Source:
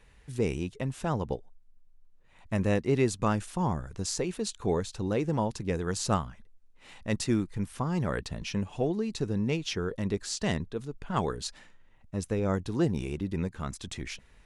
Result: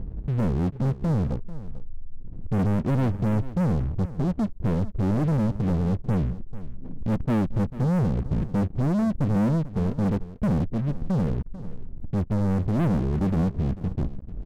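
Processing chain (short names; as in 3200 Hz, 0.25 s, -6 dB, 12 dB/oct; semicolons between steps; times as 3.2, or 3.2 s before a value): inverse Chebyshev low-pass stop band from 1600 Hz, stop band 80 dB; upward compressor, threshold -41 dBFS; sample leveller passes 5; echo 0.443 s -15.5 dB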